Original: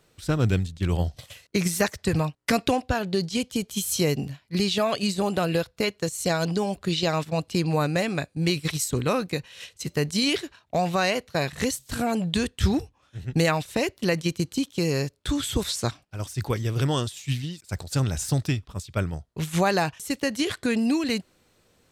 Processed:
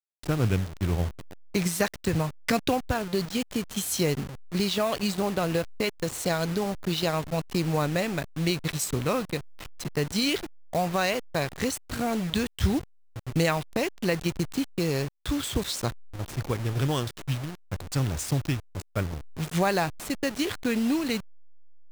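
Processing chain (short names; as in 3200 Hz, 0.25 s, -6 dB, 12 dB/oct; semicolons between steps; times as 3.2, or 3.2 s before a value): level-crossing sampler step -30.5 dBFS; gain -2 dB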